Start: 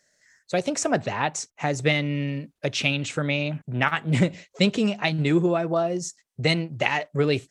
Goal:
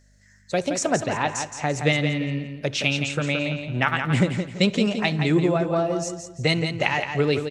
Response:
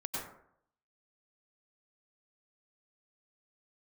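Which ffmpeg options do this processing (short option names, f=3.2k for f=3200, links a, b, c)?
-filter_complex "[0:a]aeval=exprs='val(0)+0.00141*(sin(2*PI*50*n/s)+sin(2*PI*2*50*n/s)/2+sin(2*PI*3*50*n/s)/3+sin(2*PI*4*50*n/s)/4+sin(2*PI*5*50*n/s)/5)':c=same,aecho=1:1:170|340|510|680:0.447|0.138|0.0429|0.0133,asplit=2[a][b];[1:a]atrim=start_sample=2205,asetrate=70560,aresample=44100[c];[b][c]afir=irnorm=-1:irlink=0,volume=-19dB[d];[a][d]amix=inputs=2:normalize=0"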